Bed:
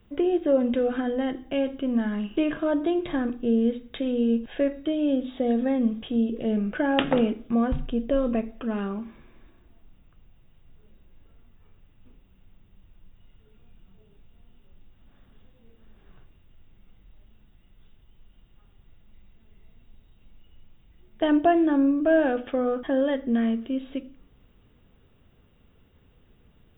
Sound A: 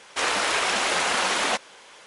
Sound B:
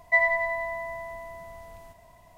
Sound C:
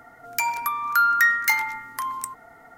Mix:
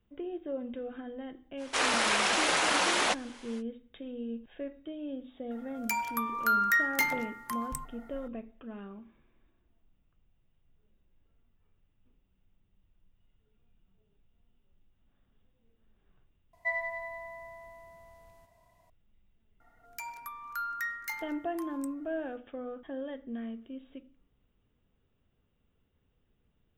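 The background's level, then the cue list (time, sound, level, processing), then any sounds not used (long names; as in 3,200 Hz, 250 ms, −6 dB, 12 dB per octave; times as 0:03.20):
bed −15 dB
0:01.57: mix in A −3.5 dB, fades 0.05 s
0:05.51: mix in C −7.5 dB
0:16.53: overwrite with B −11 dB
0:19.60: mix in C −17 dB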